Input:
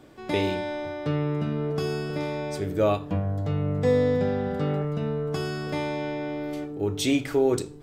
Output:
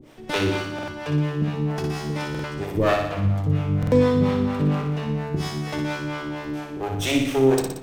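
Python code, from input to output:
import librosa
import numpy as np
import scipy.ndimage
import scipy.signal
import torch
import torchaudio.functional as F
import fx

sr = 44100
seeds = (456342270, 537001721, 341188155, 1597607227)

p1 = fx.lower_of_two(x, sr, delay_ms=0.33)
p2 = fx.harmonic_tremolo(p1, sr, hz=4.3, depth_pct=100, crossover_hz=470.0)
p3 = p2 + fx.room_flutter(p2, sr, wall_m=10.3, rt60_s=0.8, dry=0)
p4 = fx.buffer_glitch(p3, sr, at_s=(0.74, 2.3, 3.78), block=2048, repeats=2)
y = p4 * 10.0 ** (7.0 / 20.0)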